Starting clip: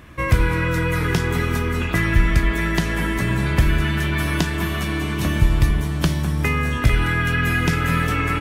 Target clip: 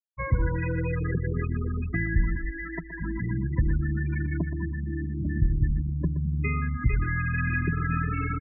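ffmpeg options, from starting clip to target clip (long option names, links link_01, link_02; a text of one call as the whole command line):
ffmpeg -i in.wav -filter_complex "[0:a]asettb=1/sr,asplit=3[link_01][link_02][link_03];[link_01]atrim=end=2.354[link_04];[link_02]atrim=start=2.35:end=3.01,asetpts=PTS-STARTPTS,afade=type=in:duration=0.004:curve=qsin,afade=type=out:start_time=0.656:duration=0.004:curve=qsin,equalizer=frequency=95:width=0.79:gain=-14.5[link_05];[link_03]atrim=start=3.006[link_06];[link_04][link_05]acrossfade=duration=0.004:curve1=hsin:curve2=qsin[link_07];[link_07][link_06]acrossfade=duration=0.004:curve1=qsin:curve2=hsin,afftfilt=real='re*gte(hypot(re,im),0.251)':imag='im*gte(hypot(re,im),0.251)':win_size=1024:overlap=0.75,asplit=2[link_08][link_09];[link_09]adelay=122.4,volume=-12dB,highshelf=frequency=4000:gain=-2.76[link_10];[link_08][link_10]amix=inputs=2:normalize=0,volume=-7dB" out.wav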